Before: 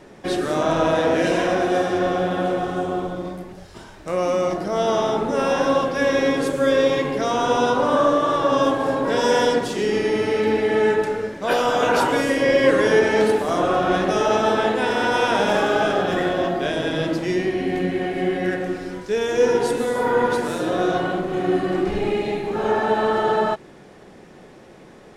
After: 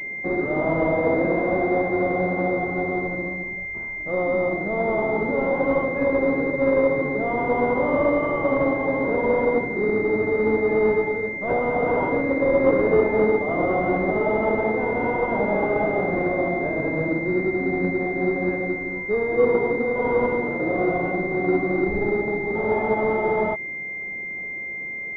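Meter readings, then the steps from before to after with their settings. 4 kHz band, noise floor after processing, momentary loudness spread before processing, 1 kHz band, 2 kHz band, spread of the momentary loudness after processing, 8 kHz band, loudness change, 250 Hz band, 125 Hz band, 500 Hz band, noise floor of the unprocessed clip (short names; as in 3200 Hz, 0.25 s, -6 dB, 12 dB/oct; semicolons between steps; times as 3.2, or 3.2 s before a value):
under -25 dB, -32 dBFS, 6 LU, -5.0 dB, +1.0 dB, 6 LU, under -30 dB, -2.0 dB, -1.0 dB, -0.5 dB, -1.5 dB, -45 dBFS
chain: CVSD 16 kbps; pulse-width modulation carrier 2100 Hz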